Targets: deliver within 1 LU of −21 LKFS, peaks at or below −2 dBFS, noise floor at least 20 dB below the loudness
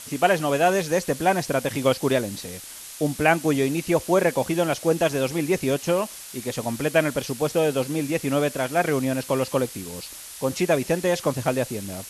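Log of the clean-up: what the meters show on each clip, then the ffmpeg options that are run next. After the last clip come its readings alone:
background noise floor −40 dBFS; target noise floor −44 dBFS; integrated loudness −23.5 LKFS; sample peak −5.0 dBFS; target loudness −21.0 LKFS
→ -af "afftdn=noise_reduction=6:noise_floor=-40"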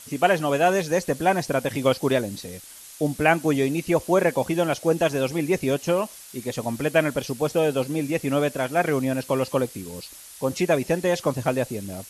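background noise floor −44 dBFS; integrated loudness −23.5 LKFS; sample peak −5.0 dBFS; target loudness −21.0 LKFS
→ -af "volume=2.5dB"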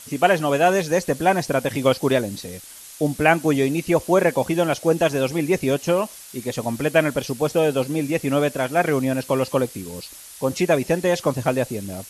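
integrated loudness −21.0 LKFS; sample peak −2.5 dBFS; background noise floor −42 dBFS

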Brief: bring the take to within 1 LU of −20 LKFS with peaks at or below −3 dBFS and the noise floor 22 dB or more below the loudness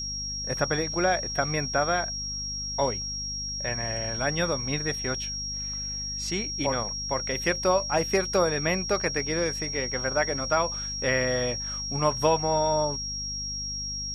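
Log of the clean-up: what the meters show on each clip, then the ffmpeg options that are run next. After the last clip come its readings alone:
mains hum 50 Hz; hum harmonics up to 250 Hz; level of the hum −38 dBFS; interfering tone 5,600 Hz; level of the tone −31 dBFS; integrated loudness −27.0 LKFS; sample peak −9.0 dBFS; target loudness −20.0 LKFS
→ -af "bandreject=frequency=50:width_type=h:width=4,bandreject=frequency=100:width_type=h:width=4,bandreject=frequency=150:width_type=h:width=4,bandreject=frequency=200:width_type=h:width=4,bandreject=frequency=250:width_type=h:width=4"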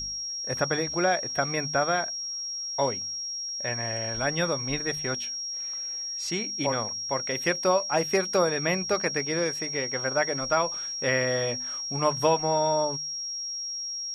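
mains hum none found; interfering tone 5,600 Hz; level of the tone −31 dBFS
→ -af "bandreject=frequency=5600:width=30"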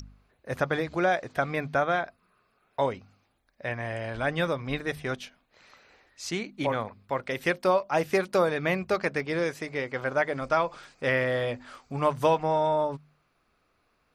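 interfering tone none found; integrated loudness −28.5 LKFS; sample peak −9.5 dBFS; target loudness −20.0 LKFS
→ -af "volume=8.5dB,alimiter=limit=-3dB:level=0:latency=1"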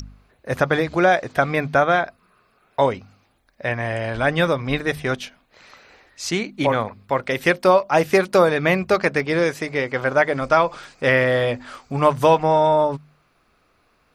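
integrated loudness −20.0 LKFS; sample peak −3.0 dBFS; background noise floor −63 dBFS

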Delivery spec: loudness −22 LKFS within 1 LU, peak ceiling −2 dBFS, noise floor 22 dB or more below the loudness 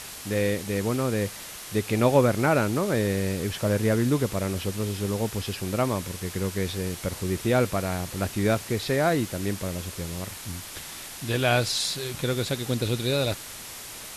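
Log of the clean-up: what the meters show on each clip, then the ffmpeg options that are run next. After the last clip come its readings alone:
background noise floor −40 dBFS; target noise floor −49 dBFS; integrated loudness −26.5 LKFS; sample peak −8.0 dBFS; target loudness −22.0 LKFS
→ -af "afftdn=noise_reduction=9:noise_floor=-40"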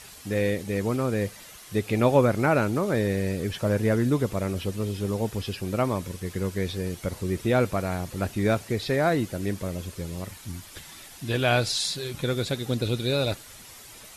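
background noise floor −46 dBFS; target noise floor −49 dBFS
→ -af "afftdn=noise_reduction=6:noise_floor=-46"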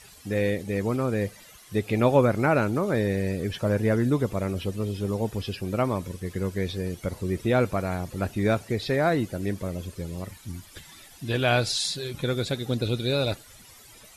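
background noise floor −50 dBFS; integrated loudness −26.5 LKFS; sample peak −8.0 dBFS; target loudness −22.0 LKFS
→ -af "volume=4.5dB"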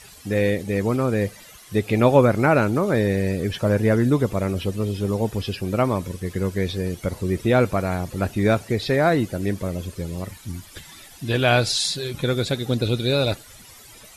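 integrated loudness −22.0 LKFS; sample peak −3.5 dBFS; background noise floor −46 dBFS

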